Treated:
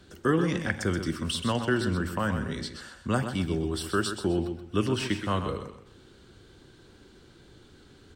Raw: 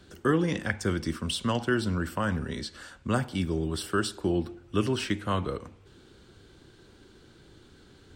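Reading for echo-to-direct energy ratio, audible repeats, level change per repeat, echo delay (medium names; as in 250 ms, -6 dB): -8.0 dB, 3, -11.0 dB, 128 ms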